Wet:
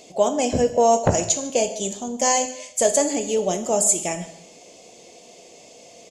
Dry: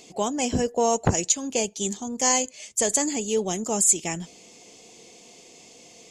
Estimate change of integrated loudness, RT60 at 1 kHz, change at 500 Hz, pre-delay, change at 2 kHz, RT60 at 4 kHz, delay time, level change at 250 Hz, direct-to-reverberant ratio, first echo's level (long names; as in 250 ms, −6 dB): +3.0 dB, 0.75 s, +6.5 dB, 6 ms, +1.0 dB, 0.65 s, 147 ms, +1.5 dB, 7.0 dB, −21.0 dB